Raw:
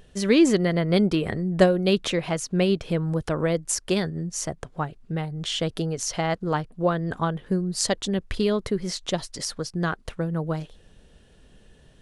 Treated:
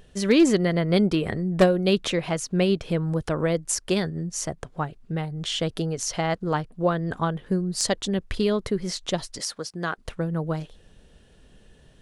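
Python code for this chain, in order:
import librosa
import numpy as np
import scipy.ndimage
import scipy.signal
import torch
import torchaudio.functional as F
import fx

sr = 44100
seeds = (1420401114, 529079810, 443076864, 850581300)

y = np.minimum(x, 2.0 * 10.0 ** (-11.0 / 20.0) - x)
y = fx.highpass(y, sr, hz=360.0, slope=6, at=(9.39, 9.98))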